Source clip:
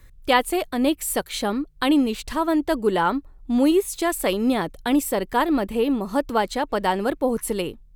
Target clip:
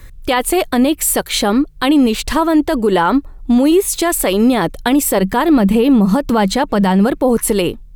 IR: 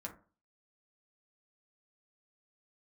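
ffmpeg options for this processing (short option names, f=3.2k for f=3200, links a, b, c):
-filter_complex "[0:a]asettb=1/sr,asplit=3[a][b][c];[a]atrim=end=5.214[d];[b]atrim=start=5.21:end=7.18,asetpts=PTS-STARTPTS,afade=t=in:d=0.004:c=qsin,afade=t=out:st=1.966:d=0.004:c=qsin,equalizer=f=190:t=o:w=0.33:g=14.5[e];[c]atrim=start=7.176[f];[d][e]acrossfade=d=0.004:c1=hsin:c2=qsin[g];[g][f]acrossfade=d=0.004:c1=qsin:c2=hsin,alimiter=level_in=16.5dB:limit=-1dB:release=50:level=0:latency=1,volume=-4dB"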